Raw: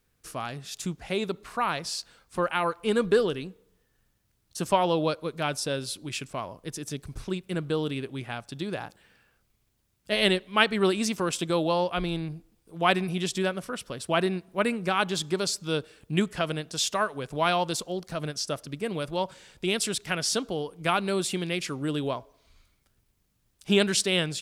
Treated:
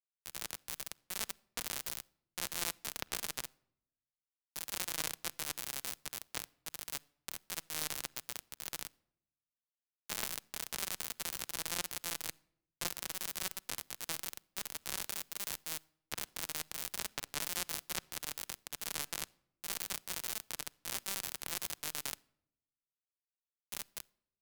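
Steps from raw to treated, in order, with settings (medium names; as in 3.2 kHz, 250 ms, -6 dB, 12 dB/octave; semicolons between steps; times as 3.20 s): fade out at the end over 3.17 s; bass shelf 380 Hz -2.5 dB; valve stage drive 29 dB, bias 0.65; chorus voices 2, 0.28 Hz, delay 13 ms, depth 1.2 ms; hum notches 60/120/180/240/300/360/420/480/540 Hz; compression 12:1, threshold -38 dBFS, peak gain reduction 8.5 dB; high-pass 81 Hz 24 dB/octave; bass shelf 110 Hz -11.5 dB; peak limiter -38.5 dBFS, peak gain reduction 9 dB; companded quantiser 2-bit; on a send at -19.5 dB: reverberation RT60 1.0 s, pre-delay 6 ms; on the sum: three bands expanded up and down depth 40%; trim +9.5 dB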